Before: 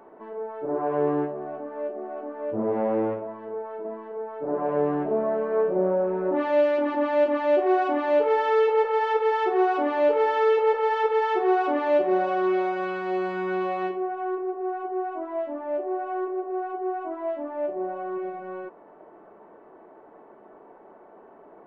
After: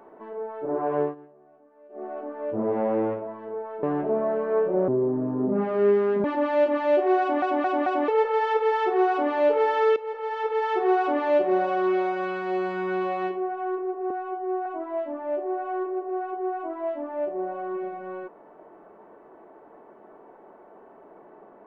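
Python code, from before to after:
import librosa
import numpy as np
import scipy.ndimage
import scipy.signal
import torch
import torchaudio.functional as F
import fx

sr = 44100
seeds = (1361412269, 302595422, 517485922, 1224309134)

y = fx.edit(x, sr, fx.fade_down_up(start_s=1.01, length_s=1.02, db=-21.5, fade_s=0.14),
    fx.cut(start_s=3.83, length_s=1.02),
    fx.speed_span(start_s=5.9, length_s=0.94, speed=0.69),
    fx.stutter_over(start_s=7.8, slice_s=0.22, count=4),
    fx.fade_in_from(start_s=10.56, length_s=0.89, floor_db=-16.0),
    fx.stretch_span(start_s=14.7, length_s=0.37, factor=1.5), tone=tone)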